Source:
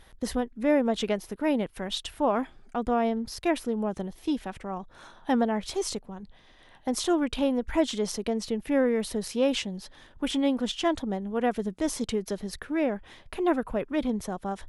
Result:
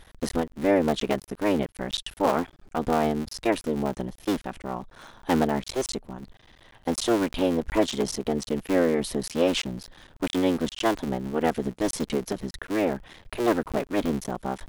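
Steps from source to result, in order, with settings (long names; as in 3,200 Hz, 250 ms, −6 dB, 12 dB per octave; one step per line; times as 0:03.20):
sub-harmonics by changed cycles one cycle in 3, muted
level +3.5 dB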